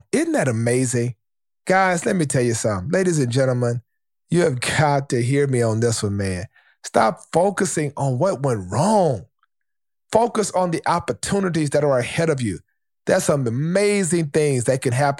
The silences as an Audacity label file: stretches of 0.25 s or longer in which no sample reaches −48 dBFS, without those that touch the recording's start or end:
1.130000	1.670000	silence
3.810000	4.300000	silence
9.440000	10.100000	silence
12.610000	13.070000	silence